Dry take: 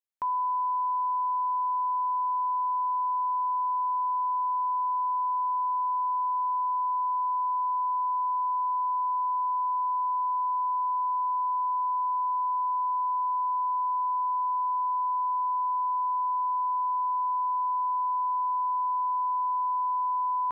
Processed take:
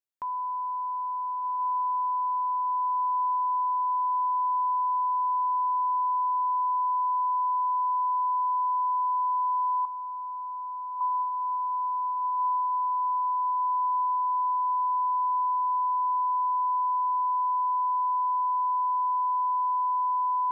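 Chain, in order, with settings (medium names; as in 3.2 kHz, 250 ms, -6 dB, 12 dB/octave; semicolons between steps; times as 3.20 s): 9.85–11.01 s: high-pass 1 kHz 12 dB/octave; echo that smears into a reverb 1438 ms, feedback 48%, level -5 dB; trim -3.5 dB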